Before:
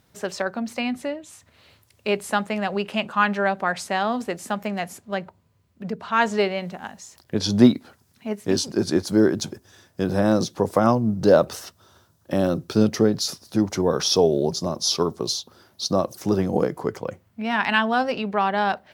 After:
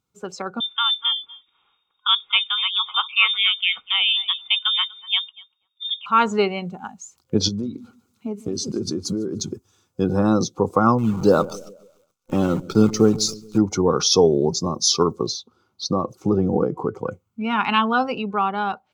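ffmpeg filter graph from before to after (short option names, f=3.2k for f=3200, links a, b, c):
-filter_complex "[0:a]asettb=1/sr,asplit=3[a][b][c];[a]atrim=end=0.604[d];[b]atrim=start=0.6:end=6.06,asetpts=PTS-STARTPTS,afade=t=in:d=0.004:c=qsin,afade=t=out:st=5.456:d=0.004:c=qsin,lowpass=f=3.2k:t=q:w=0.5098,lowpass=f=3.2k:t=q:w=0.6013,lowpass=f=3.2k:t=q:w=0.9,lowpass=f=3.2k:t=q:w=2.563,afreqshift=-3800,asplit=2[e][f];[f]adelay=242,lowpass=f=1.2k:p=1,volume=-10dB,asplit=2[g][h];[h]adelay=242,lowpass=f=1.2k:p=1,volume=0.31,asplit=2[i][j];[j]adelay=242,lowpass=f=1.2k:p=1,volume=0.31[k];[e][g][i][k]amix=inputs=4:normalize=0,atrim=end_sample=240786[l];[c]atrim=start=6.056[m];[d][l]acrossfade=d=0.004:c1=hsin:c2=qsin[n];[n][m]acrossfade=d=0.004:c1=qsin:c2=hsin,asettb=1/sr,asplit=3[o][p][q];[o]atrim=end=7.484[r];[p]atrim=start=7.48:end=9.52,asetpts=PTS-STARTPTS,afade=t=in:d=0.004:c=qsin,afade=t=out:st=2.036:d=0.004:c=qsin,acompressor=threshold=-28dB:ratio=16:attack=3.2:release=140:knee=1:detection=peak,aecho=1:1:149|298|447|596:0.168|0.0755|0.034|0.0153,atrim=end_sample=89964[s];[q]atrim=start=9.516[t];[r][s]acrossfade=d=0.004:c1=hsin:c2=qsin[u];[u][t]acrossfade=d=0.004:c1=qsin:c2=hsin,asettb=1/sr,asplit=3[v][w][x];[v]atrim=end=10.984[y];[w]atrim=start=10.98:end=13.58,asetpts=PTS-STARTPTS,afade=t=in:d=0.004:c=qsin,afade=t=out:st=2.596:d=0.004:c=qsin,acrusher=bits=6:dc=4:mix=0:aa=0.000001,aecho=1:1:139|278|417|556|695:0.119|0.0642|0.0347|0.0187|0.0101,atrim=end_sample=114660[z];[x]atrim=start=13.576[aa];[y][z]acrossfade=d=0.004:c1=hsin:c2=qsin[ab];[ab][aa]acrossfade=d=0.004:c1=qsin:c2=hsin,asettb=1/sr,asplit=3[ac][ad][ae];[ac]atrim=end=15.264[af];[ad]atrim=start=15.26:end=16.99,asetpts=PTS-STARTPTS,afade=t=in:d=0.004:c=qsin,afade=t=out:st=1.726:d=0.004:c=qsin,lowpass=f=2.8k:p=1,acompressor=threshold=-24dB:ratio=2:attack=3.2:release=140:knee=1:detection=peak[ag];[ae]atrim=start=16.986[ah];[af][ag]acrossfade=d=0.004:c1=hsin:c2=qsin[ai];[ai][ah]acrossfade=d=0.004:c1=qsin:c2=hsin,afftdn=nr=15:nf=-35,superequalizer=8b=0.398:10b=1.58:11b=0.316:15b=1.78,dynaudnorm=f=140:g=13:m=11.5dB,volume=-2.5dB"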